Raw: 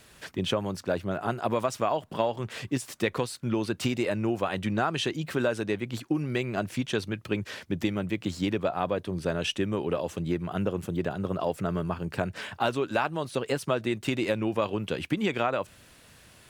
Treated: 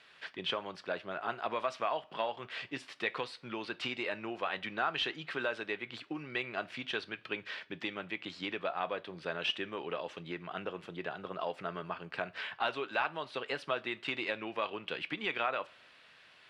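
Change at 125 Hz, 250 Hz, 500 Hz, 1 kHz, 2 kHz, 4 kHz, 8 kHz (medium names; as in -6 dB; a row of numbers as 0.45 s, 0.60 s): -19.5 dB, -14.5 dB, -9.5 dB, -5.0 dB, -1.5 dB, -2.5 dB, -18.5 dB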